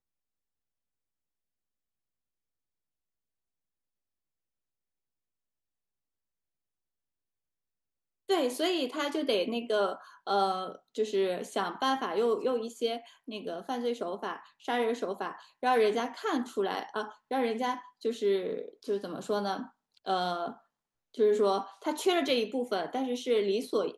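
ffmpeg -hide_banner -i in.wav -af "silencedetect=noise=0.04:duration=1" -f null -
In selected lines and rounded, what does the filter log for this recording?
silence_start: 0.00
silence_end: 8.30 | silence_duration: 8.30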